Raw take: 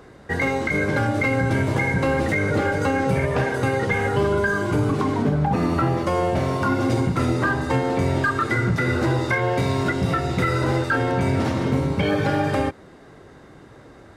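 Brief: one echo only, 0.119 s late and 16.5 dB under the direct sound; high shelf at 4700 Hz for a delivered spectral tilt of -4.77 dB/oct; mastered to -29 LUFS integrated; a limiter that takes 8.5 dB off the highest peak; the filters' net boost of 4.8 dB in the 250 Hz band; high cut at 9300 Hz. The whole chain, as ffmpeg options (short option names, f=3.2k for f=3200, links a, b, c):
-af "lowpass=9.3k,equalizer=f=250:t=o:g=6,highshelf=f=4.7k:g=-4.5,alimiter=limit=-15dB:level=0:latency=1,aecho=1:1:119:0.15,volume=-5.5dB"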